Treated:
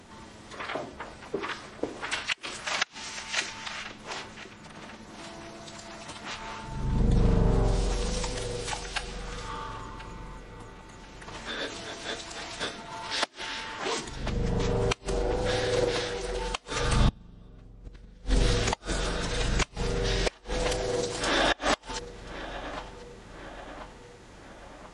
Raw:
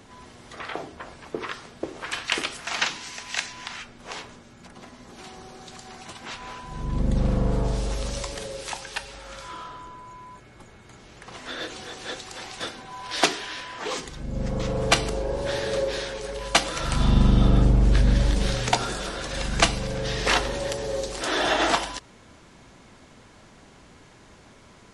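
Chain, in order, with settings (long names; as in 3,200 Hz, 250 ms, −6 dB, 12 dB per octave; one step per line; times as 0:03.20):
feedback echo with a low-pass in the loop 1,037 ms, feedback 56%, low-pass 3,000 Hz, level −15 dB
gate with flip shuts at −10 dBFS, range −32 dB
phase-vocoder pitch shift with formants kept −2 semitones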